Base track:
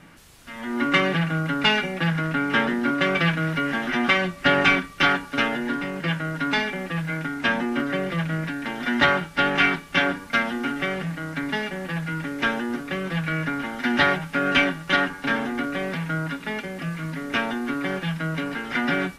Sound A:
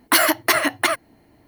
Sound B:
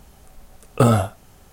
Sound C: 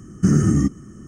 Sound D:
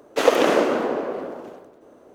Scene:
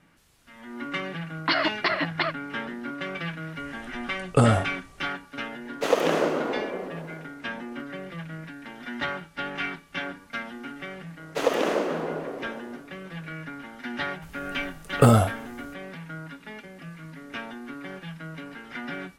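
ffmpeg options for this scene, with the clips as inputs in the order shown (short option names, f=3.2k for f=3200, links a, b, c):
-filter_complex "[2:a]asplit=2[a][b];[4:a]asplit=2[c][d];[0:a]volume=-11.5dB[e];[1:a]aresample=11025,aresample=44100[f];[a]aresample=22050,aresample=44100[g];[f]atrim=end=1.47,asetpts=PTS-STARTPTS,volume=-6.5dB,afade=t=in:d=0.004:c=hsin,afade=t=out:st=1.466:d=0.004:c=hsin,adelay=1360[h];[g]atrim=end=1.52,asetpts=PTS-STARTPTS,volume=-3.5dB,afade=t=in:d=0.004:c=hsin,afade=t=out:st=1.516:d=0.004:c=hsin,adelay=157437S[i];[c]atrim=end=2.14,asetpts=PTS-STARTPTS,volume=-5.5dB,afade=t=in:d=0.004:c=hsin,afade=t=out:st=2.136:d=0.004:c=hsin,adelay=249165S[j];[d]atrim=end=2.14,asetpts=PTS-STARTPTS,volume=-7dB,afade=t=in:d=0.004:c=hsin,afade=t=out:st=2.136:d=0.004:c=hsin,adelay=11190[k];[b]atrim=end=1.52,asetpts=PTS-STARTPTS,volume=-1dB,afade=t=in:d=0.004:c=hsin,afade=t=out:st=1.516:d=0.004:c=hsin,adelay=14220[l];[e][h][i][j][k][l]amix=inputs=6:normalize=0"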